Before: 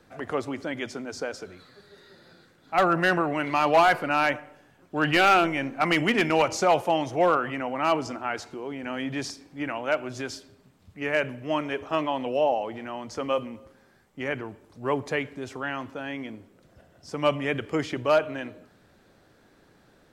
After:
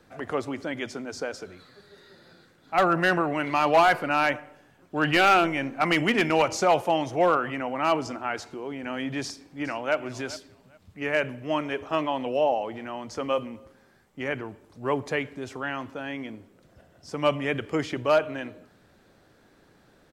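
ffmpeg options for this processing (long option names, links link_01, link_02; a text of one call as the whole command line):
ffmpeg -i in.wav -filter_complex "[0:a]asplit=2[link_01][link_02];[link_02]afade=type=in:start_time=9.23:duration=0.01,afade=type=out:start_time=9.95:duration=0.01,aecho=0:1:410|820:0.133352|0.0266704[link_03];[link_01][link_03]amix=inputs=2:normalize=0" out.wav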